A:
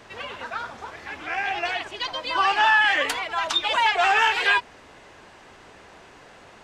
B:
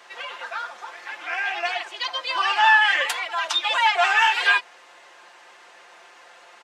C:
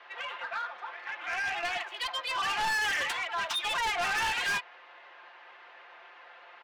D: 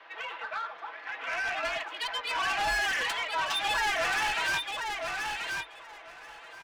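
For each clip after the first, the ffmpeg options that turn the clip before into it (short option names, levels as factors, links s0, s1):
-af "highpass=670,aecho=1:1:5.7:0.64"
-filter_complex "[0:a]acrossover=split=590|1600|3900[s0][s1][s2][s3];[s3]aeval=exprs='sgn(val(0))*max(abs(val(0))-0.00316,0)':c=same[s4];[s0][s1][s2][s4]amix=inputs=4:normalize=0,asplit=2[s5][s6];[s6]highpass=f=720:p=1,volume=3.98,asoftclip=type=tanh:threshold=0.562[s7];[s5][s7]amix=inputs=2:normalize=0,lowpass=f=4400:p=1,volume=0.501,asoftclip=type=tanh:threshold=0.119,volume=0.376"
-af "aecho=1:1:1031|2062|3093:0.596|0.0953|0.0152,afreqshift=-46"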